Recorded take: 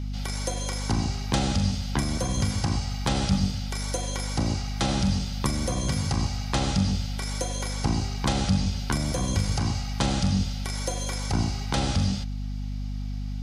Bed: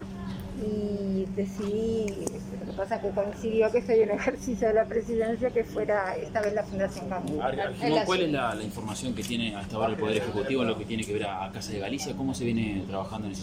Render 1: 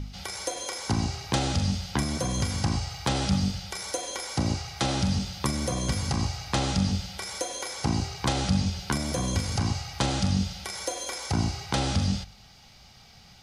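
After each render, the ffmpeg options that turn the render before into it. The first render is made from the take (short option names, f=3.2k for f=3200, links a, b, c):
-af "bandreject=f=50:t=h:w=4,bandreject=f=100:t=h:w=4,bandreject=f=150:t=h:w=4,bandreject=f=200:t=h:w=4,bandreject=f=250:t=h:w=4"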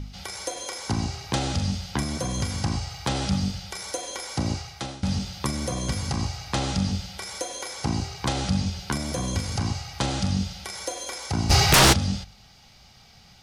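-filter_complex "[0:a]asplit=3[a][b][c];[a]afade=t=out:st=11.49:d=0.02[d];[b]aeval=exprs='0.266*sin(PI/2*7.08*val(0)/0.266)':c=same,afade=t=in:st=11.49:d=0.02,afade=t=out:st=11.92:d=0.02[e];[c]afade=t=in:st=11.92:d=0.02[f];[d][e][f]amix=inputs=3:normalize=0,asplit=2[g][h];[g]atrim=end=5.03,asetpts=PTS-STARTPTS,afade=t=out:st=4.57:d=0.46:silence=0.112202[i];[h]atrim=start=5.03,asetpts=PTS-STARTPTS,afade=t=in:d=0.004:c=hsin:silence=0.112202[j];[i][j]concat=n=2:v=0:a=1"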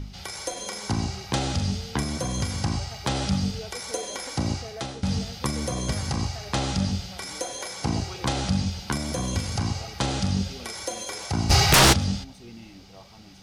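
-filter_complex "[1:a]volume=-16.5dB[a];[0:a][a]amix=inputs=2:normalize=0"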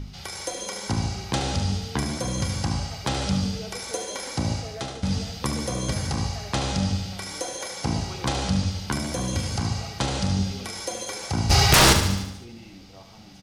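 -af "aecho=1:1:73|146|219|292|365|438|511:0.376|0.214|0.122|0.0696|0.0397|0.0226|0.0129"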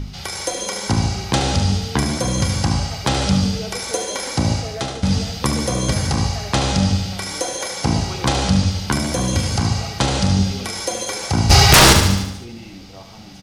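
-af "volume=7.5dB,alimiter=limit=-2dB:level=0:latency=1"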